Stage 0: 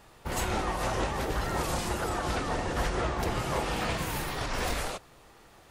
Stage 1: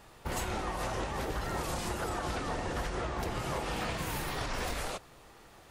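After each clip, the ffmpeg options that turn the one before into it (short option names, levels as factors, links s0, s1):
-af "acompressor=threshold=0.0282:ratio=6"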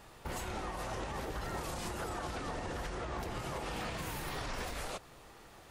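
-af "alimiter=level_in=2:limit=0.0631:level=0:latency=1:release=143,volume=0.501"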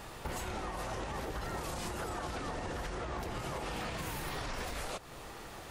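-af "acompressor=threshold=0.00398:ratio=2.5,volume=2.66"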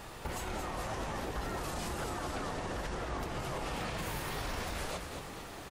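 -filter_complex "[0:a]asplit=7[s0][s1][s2][s3][s4][s5][s6];[s1]adelay=221,afreqshift=-100,volume=0.501[s7];[s2]adelay=442,afreqshift=-200,volume=0.257[s8];[s3]adelay=663,afreqshift=-300,volume=0.13[s9];[s4]adelay=884,afreqshift=-400,volume=0.0668[s10];[s5]adelay=1105,afreqshift=-500,volume=0.0339[s11];[s6]adelay=1326,afreqshift=-600,volume=0.0174[s12];[s0][s7][s8][s9][s10][s11][s12]amix=inputs=7:normalize=0"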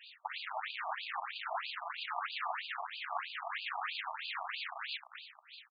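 -filter_complex "[0:a]acrossover=split=220|2400[s0][s1][s2];[s1]acrusher=bits=5:mix=0:aa=0.5[s3];[s0][s3][s2]amix=inputs=3:normalize=0,afftfilt=real='re*between(b*sr/1024,860*pow(3500/860,0.5+0.5*sin(2*PI*3.1*pts/sr))/1.41,860*pow(3500/860,0.5+0.5*sin(2*PI*3.1*pts/sr))*1.41)':imag='im*between(b*sr/1024,860*pow(3500/860,0.5+0.5*sin(2*PI*3.1*pts/sr))/1.41,860*pow(3500/860,0.5+0.5*sin(2*PI*3.1*pts/sr))*1.41)':win_size=1024:overlap=0.75,volume=2.24"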